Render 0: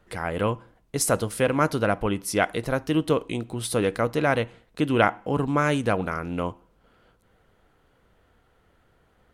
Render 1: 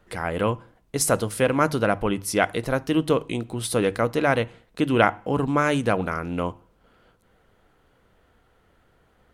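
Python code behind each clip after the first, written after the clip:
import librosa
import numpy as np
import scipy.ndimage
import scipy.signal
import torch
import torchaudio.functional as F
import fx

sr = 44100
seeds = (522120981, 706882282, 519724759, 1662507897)

y = fx.hum_notches(x, sr, base_hz=50, count=3)
y = F.gain(torch.from_numpy(y), 1.5).numpy()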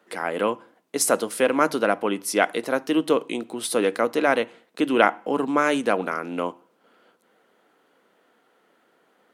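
y = scipy.signal.sosfilt(scipy.signal.butter(4, 230.0, 'highpass', fs=sr, output='sos'), x)
y = F.gain(torch.from_numpy(y), 1.0).numpy()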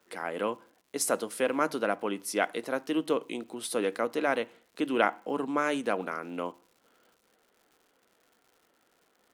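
y = fx.dmg_crackle(x, sr, seeds[0], per_s=180.0, level_db=-44.0)
y = F.gain(torch.from_numpy(y), -7.5).numpy()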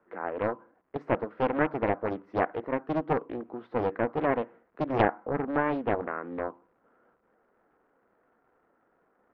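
y = scipy.signal.sosfilt(scipy.signal.butter(4, 1600.0, 'lowpass', fs=sr, output='sos'), x)
y = fx.doppler_dist(y, sr, depth_ms=0.78)
y = F.gain(torch.from_numpy(y), 1.5).numpy()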